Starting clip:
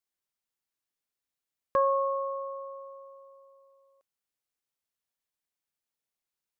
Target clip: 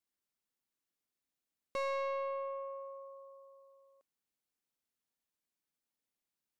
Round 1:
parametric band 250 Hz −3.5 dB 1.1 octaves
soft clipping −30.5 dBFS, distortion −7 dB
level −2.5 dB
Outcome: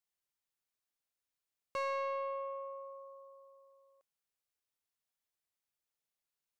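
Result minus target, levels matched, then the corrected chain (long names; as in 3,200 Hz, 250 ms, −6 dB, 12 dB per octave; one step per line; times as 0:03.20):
250 Hz band −4.5 dB
parametric band 250 Hz +7.5 dB 1.1 octaves
soft clipping −30.5 dBFS, distortion −6 dB
level −2.5 dB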